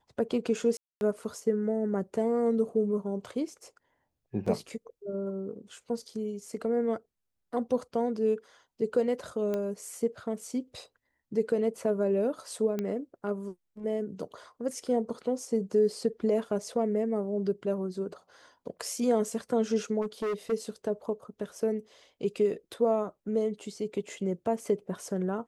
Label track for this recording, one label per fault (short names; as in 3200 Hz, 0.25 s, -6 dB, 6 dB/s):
0.770000	1.010000	gap 0.241 s
4.460000	4.460000	gap 4.8 ms
9.540000	9.540000	pop -20 dBFS
12.790000	12.790000	pop -19 dBFS
20.010000	20.530000	clipped -28 dBFS